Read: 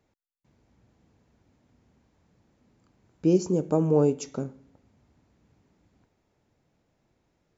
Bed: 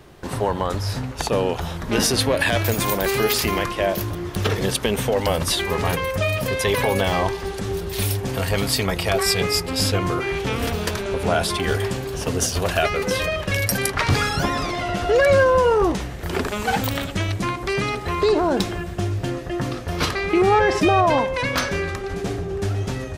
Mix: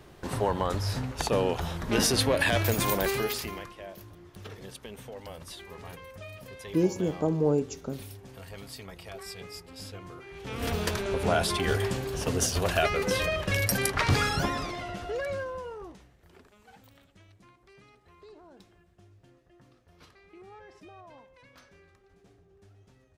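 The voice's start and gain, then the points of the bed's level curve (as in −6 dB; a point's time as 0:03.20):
3.50 s, −3.5 dB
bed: 0:03.02 −5 dB
0:03.81 −22 dB
0:10.30 −22 dB
0:10.71 −5 dB
0:14.33 −5 dB
0:16.50 −33.5 dB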